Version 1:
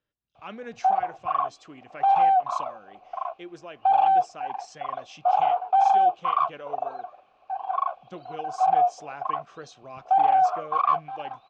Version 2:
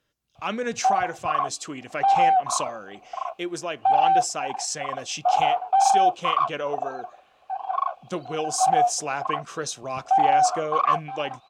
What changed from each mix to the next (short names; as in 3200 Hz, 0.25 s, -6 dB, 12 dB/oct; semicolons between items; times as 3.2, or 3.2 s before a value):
speech +10.0 dB; master: remove air absorption 160 m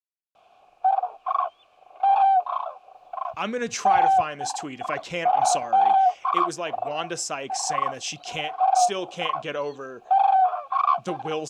speech: entry +2.95 s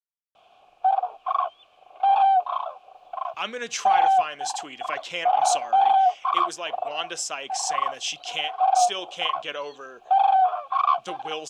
speech: add HPF 780 Hz 6 dB/oct; master: add bell 3200 Hz +6.5 dB 0.42 oct